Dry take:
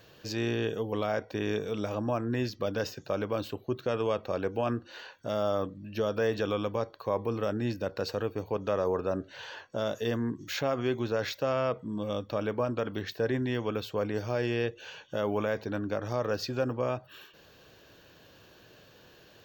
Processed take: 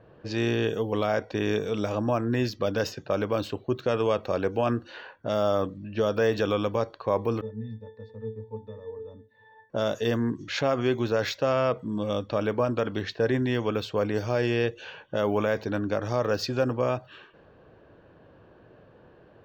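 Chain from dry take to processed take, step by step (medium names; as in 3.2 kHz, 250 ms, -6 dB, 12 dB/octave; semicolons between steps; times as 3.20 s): level-controlled noise filter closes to 970 Hz, open at -28 dBFS; 7.41–9.70 s: pitch-class resonator A, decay 0.3 s; trim +4.5 dB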